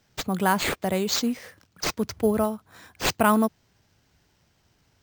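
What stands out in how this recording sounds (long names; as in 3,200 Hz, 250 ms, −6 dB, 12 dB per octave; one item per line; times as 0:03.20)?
aliases and images of a low sample rate 11,000 Hz, jitter 0%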